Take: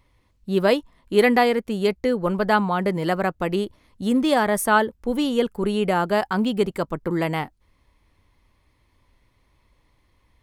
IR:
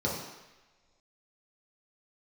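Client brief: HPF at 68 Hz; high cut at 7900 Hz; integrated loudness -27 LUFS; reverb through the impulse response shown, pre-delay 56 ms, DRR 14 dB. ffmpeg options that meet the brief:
-filter_complex "[0:a]highpass=68,lowpass=7.9k,asplit=2[a][b];[1:a]atrim=start_sample=2205,adelay=56[c];[b][c]afir=irnorm=-1:irlink=0,volume=-22.5dB[d];[a][d]amix=inputs=2:normalize=0,volume=-5.5dB"

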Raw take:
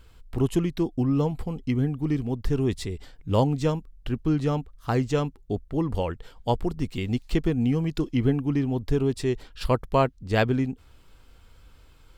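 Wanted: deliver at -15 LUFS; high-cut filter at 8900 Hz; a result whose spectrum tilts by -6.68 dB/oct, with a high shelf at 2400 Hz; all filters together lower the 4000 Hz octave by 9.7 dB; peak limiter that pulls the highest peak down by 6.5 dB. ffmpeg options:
-af "lowpass=8.9k,highshelf=f=2.4k:g=-5.5,equalizer=f=4k:t=o:g=-8.5,volume=13.5dB,alimiter=limit=-3dB:level=0:latency=1"

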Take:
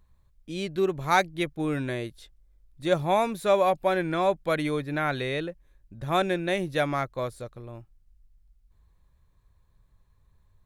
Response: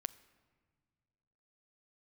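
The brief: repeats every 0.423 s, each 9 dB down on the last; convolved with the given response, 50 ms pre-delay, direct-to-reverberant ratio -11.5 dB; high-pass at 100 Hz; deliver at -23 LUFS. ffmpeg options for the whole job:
-filter_complex "[0:a]highpass=100,aecho=1:1:423|846|1269|1692:0.355|0.124|0.0435|0.0152,asplit=2[a][b];[1:a]atrim=start_sample=2205,adelay=50[c];[b][c]afir=irnorm=-1:irlink=0,volume=13.5dB[d];[a][d]amix=inputs=2:normalize=0,volume=-8dB"

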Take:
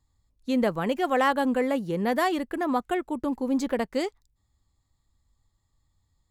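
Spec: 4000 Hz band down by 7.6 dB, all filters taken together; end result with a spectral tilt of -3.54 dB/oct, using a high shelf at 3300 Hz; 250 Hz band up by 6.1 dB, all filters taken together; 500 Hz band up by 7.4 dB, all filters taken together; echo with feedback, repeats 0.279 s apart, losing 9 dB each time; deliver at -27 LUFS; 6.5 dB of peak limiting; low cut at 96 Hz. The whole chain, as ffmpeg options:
-af "highpass=96,equalizer=f=250:t=o:g=5,equalizer=f=500:t=o:g=7.5,highshelf=f=3.3k:g=-4.5,equalizer=f=4k:t=o:g=-8,alimiter=limit=-12.5dB:level=0:latency=1,aecho=1:1:279|558|837|1116:0.355|0.124|0.0435|0.0152,volume=-5.5dB"

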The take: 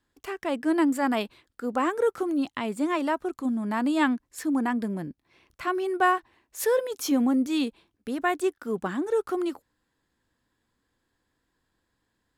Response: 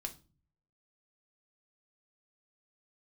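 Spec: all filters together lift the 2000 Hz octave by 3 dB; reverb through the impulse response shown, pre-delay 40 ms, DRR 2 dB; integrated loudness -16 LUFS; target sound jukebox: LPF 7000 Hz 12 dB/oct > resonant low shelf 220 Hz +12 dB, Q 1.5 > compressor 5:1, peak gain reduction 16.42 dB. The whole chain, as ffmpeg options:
-filter_complex "[0:a]equalizer=f=2k:t=o:g=4,asplit=2[a][b];[1:a]atrim=start_sample=2205,adelay=40[c];[b][c]afir=irnorm=-1:irlink=0,volume=0dB[d];[a][d]amix=inputs=2:normalize=0,lowpass=7k,lowshelf=f=220:t=q:w=1.5:g=12,acompressor=threshold=-33dB:ratio=5,volume=20dB"

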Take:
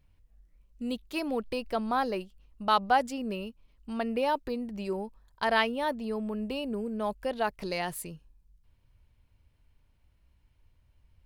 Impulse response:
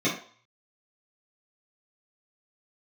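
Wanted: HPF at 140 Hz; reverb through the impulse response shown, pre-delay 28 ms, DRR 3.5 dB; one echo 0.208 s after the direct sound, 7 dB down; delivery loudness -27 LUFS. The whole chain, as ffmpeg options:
-filter_complex "[0:a]highpass=140,aecho=1:1:208:0.447,asplit=2[a][b];[1:a]atrim=start_sample=2205,adelay=28[c];[b][c]afir=irnorm=-1:irlink=0,volume=-16dB[d];[a][d]amix=inputs=2:normalize=0,volume=1.5dB"

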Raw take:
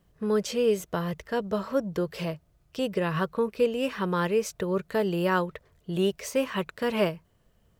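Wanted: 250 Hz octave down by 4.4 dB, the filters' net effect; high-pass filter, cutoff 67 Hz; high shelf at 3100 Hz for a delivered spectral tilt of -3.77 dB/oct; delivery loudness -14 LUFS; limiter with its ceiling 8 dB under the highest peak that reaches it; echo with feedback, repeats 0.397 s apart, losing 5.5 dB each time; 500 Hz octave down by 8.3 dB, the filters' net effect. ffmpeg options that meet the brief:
-af "highpass=67,equalizer=f=250:t=o:g=-4,equalizer=f=500:t=o:g=-9,highshelf=f=3.1k:g=7.5,alimiter=limit=-22dB:level=0:latency=1,aecho=1:1:397|794|1191|1588|1985|2382|2779:0.531|0.281|0.149|0.079|0.0419|0.0222|0.0118,volume=18.5dB"

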